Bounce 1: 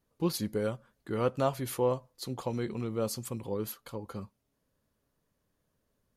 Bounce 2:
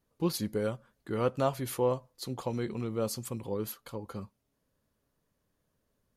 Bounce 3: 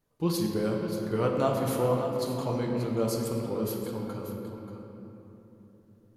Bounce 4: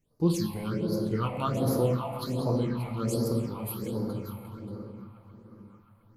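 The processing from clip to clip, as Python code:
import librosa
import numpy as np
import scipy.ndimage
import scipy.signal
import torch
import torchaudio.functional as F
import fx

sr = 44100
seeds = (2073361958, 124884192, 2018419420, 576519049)

y1 = x
y2 = y1 + 10.0 ** (-10.5 / 20.0) * np.pad(y1, (int(583 * sr / 1000.0), 0))[:len(y1)]
y2 = fx.room_shoebox(y2, sr, seeds[0], volume_m3=200.0, walls='hard', distance_m=0.48)
y3 = fx.phaser_stages(y2, sr, stages=6, low_hz=370.0, high_hz=2700.0, hz=1.3, feedback_pct=45)
y3 = fx.echo_banded(y3, sr, ms=715, feedback_pct=70, hz=1400.0, wet_db=-17.0)
y3 = y3 * 10.0 ** (1.5 / 20.0)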